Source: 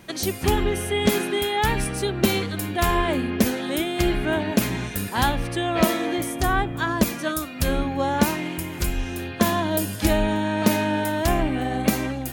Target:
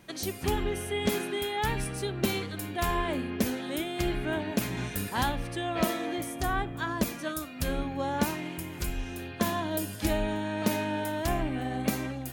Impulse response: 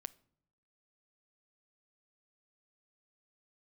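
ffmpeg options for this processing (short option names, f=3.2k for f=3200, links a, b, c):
-filter_complex "[0:a]asettb=1/sr,asplit=3[a][b][c];[a]atrim=end=4.774[d];[b]atrim=start=4.77:end=5.23,asetpts=PTS-STARTPTS,afade=t=in:d=0.004:c=qsin,afade=t=out:st=0.456:d=0.004:c=qsin,aeval=exprs='0.473*(cos(1*acos(clip(val(0)/0.473,-1,1)))-cos(1*PI/2))+0.0422*(cos(5*acos(clip(val(0)/0.473,-1,1)))-cos(5*PI/2))':c=same[e];[c]atrim=start=5.226[f];[d][e]acrossfade=d=0.004:c1=hsin:c2=qsin[g];[g][f]acrossfade=d=0.004:c1=qsin:c2=hsin[h];[1:a]atrim=start_sample=2205,atrim=end_sample=4410[i];[h][i]afir=irnorm=-1:irlink=0,volume=-3.5dB"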